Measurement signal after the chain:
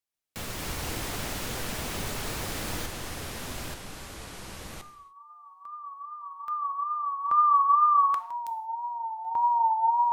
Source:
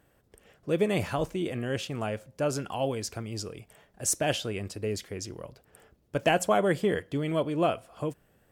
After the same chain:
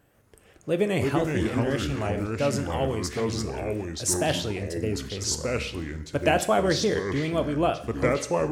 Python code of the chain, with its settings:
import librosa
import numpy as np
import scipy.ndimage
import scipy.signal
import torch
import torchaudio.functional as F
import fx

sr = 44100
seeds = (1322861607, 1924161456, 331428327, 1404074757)

y = fx.wow_flutter(x, sr, seeds[0], rate_hz=2.1, depth_cents=70.0)
y = fx.rev_gated(y, sr, seeds[1], gate_ms=210, shape='falling', drr_db=10.0)
y = fx.echo_pitch(y, sr, ms=138, semitones=-4, count=2, db_per_echo=-3.0)
y = F.gain(torch.from_numpy(y), 1.5).numpy()